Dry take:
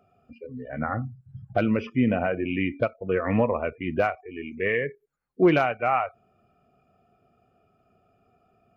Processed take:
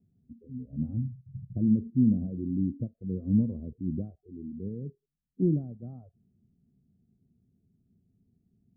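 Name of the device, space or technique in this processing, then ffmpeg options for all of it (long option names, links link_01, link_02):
the neighbour's flat through the wall: -af "lowpass=frequency=260:width=0.5412,lowpass=frequency=260:width=1.3066,equalizer=frequency=190:width_type=o:width=0.77:gain=3"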